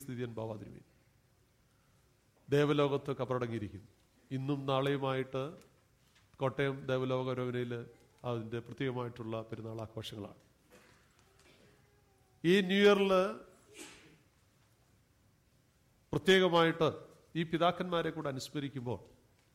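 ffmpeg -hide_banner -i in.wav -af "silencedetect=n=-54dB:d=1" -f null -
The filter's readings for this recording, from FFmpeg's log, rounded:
silence_start: 0.82
silence_end: 2.48 | silence_duration: 1.67
silence_start: 14.14
silence_end: 16.12 | silence_duration: 1.98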